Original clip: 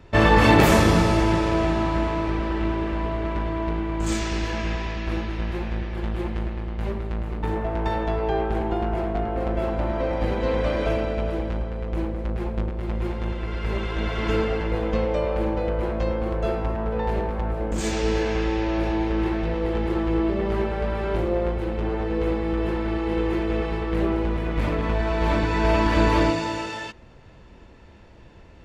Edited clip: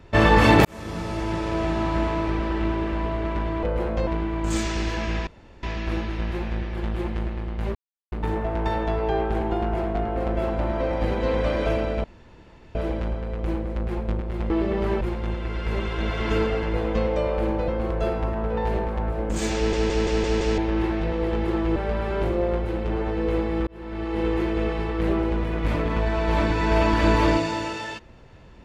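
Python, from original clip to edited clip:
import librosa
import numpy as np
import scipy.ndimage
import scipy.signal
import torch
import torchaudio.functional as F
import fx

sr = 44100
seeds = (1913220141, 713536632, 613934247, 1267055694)

y = fx.edit(x, sr, fx.fade_in_span(start_s=0.65, length_s=1.38),
    fx.insert_room_tone(at_s=4.83, length_s=0.36),
    fx.silence(start_s=6.95, length_s=0.37),
    fx.insert_room_tone(at_s=11.24, length_s=0.71),
    fx.move(start_s=15.66, length_s=0.44, to_s=3.63),
    fx.stutter_over(start_s=17.98, slice_s=0.17, count=6),
    fx.move(start_s=20.18, length_s=0.51, to_s=12.99),
    fx.fade_in_span(start_s=22.6, length_s=0.55), tone=tone)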